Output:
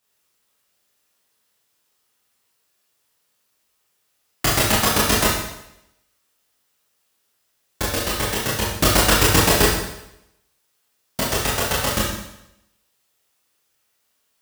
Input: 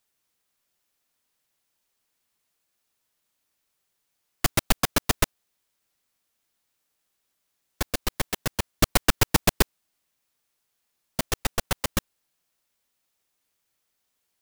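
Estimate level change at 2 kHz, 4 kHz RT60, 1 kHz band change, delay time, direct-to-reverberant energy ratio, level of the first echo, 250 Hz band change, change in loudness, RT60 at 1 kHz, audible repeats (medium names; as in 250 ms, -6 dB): +8.0 dB, 0.80 s, +8.0 dB, no echo, -6.0 dB, no echo, +6.5 dB, +7.5 dB, 0.80 s, no echo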